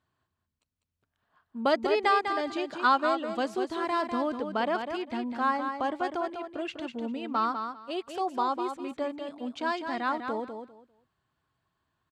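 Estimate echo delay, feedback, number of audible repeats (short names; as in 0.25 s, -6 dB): 0.199 s, 20%, 3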